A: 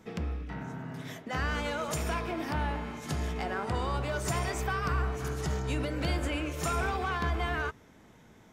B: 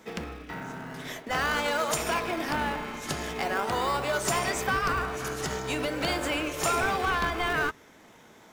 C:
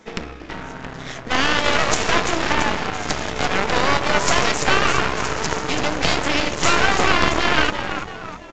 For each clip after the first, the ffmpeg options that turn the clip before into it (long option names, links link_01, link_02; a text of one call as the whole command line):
ffmpeg -i in.wav -filter_complex "[0:a]highpass=frequency=670:poles=1,asplit=2[link_01][link_02];[link_02]acrusher=samples=28:mix=1:aa=0.000001:lfo=1:lforange=28:lforate=0.44,volume=-8.5dB[link_03];[link_01][link_03]amix=inputs=2:normalize=0,volume=7dB" out.wav
ffmpeg -i in.wav -filter_complex "[0:a]asplit=8[link_01][link_02][link_03][link_04][link_05][link_06][link_07][link_08];[link_02]adelay=337,afreqshift=-130,volume=-6.5dB[link_09];[link_03]adelay=674,afreqshift=-260,volume=-11.9dB[link_10];[link_04]adelay=1011,afreqshift=-390,volume=-17.2dB[link_11];[link_05]adelay=1348,afreqshift=-520,volume=-22.6dB[link_12];[link_06]adelay=1685,afreqshift=-650,volume=-27.9dB[link_13];[link_07]adelay=2022,afreqshift=-780,volume=-33.3dB[link_14];[link_08]adelay=2359,afreqshift=-910,volume=-38.6dB[link_15];[link_01][link_09][link_10][link_11][link_12][link_13][link_14][link_15]amix=inputs=8:normalize=0,aeval=exprs='0.316*(cos(1*acos(clip(val(0)/0.316,-1,1)))-cos(1*PI/2))+0.112*(cos(6*acos(clip(val(0)/0.316,-1,1)))-cos(6*PI/2))+0.0112*(cos(7*acos(clip(val(0)/0.316,-1,1)))-cos(7*PI/2))':channel_layout=same,volume=6dB" -ar 16000 -c:a pcm_mulaw out.wav